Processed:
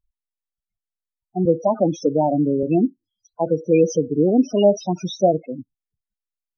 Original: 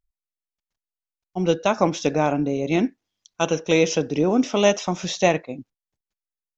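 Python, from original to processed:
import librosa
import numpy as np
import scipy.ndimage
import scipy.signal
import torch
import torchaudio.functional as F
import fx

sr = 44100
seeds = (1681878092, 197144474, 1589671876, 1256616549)

y = fx.spec_topn(x, sr, count=8)
y = fx.band_squash(y, sr, depth_pct=40, at=(1.45, 2.63))
y = y * librosa.db_to_amplitude(3.5)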